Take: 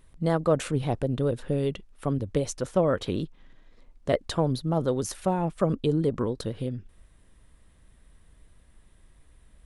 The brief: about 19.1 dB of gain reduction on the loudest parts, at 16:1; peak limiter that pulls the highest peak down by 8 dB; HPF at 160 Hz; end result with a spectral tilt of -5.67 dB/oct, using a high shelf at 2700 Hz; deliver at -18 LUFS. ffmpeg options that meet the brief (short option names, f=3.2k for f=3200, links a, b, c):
-af "highpass=160,highshelf=f=2.7k:g=-3,acompressor=threshold=-37dB:ratio=16,volume=27.5dB,alimiter=limit=-6dB:level=0:latency=1"